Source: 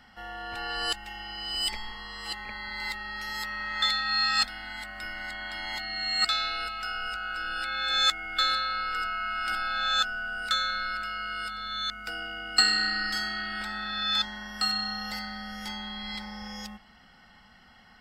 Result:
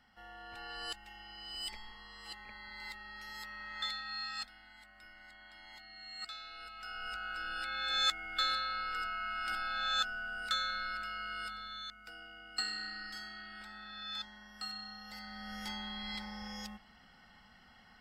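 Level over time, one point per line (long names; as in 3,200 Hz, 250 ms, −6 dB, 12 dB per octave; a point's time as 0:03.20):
0:03.82 −12 dB
0:04.71 −19 dB
0:06.44 −19 dB
0:07.14 −7 dB
0:11.51 −7 dB
0:11.94 −15 dB
0:15.05 −15 dB
0:15.54 −5 dB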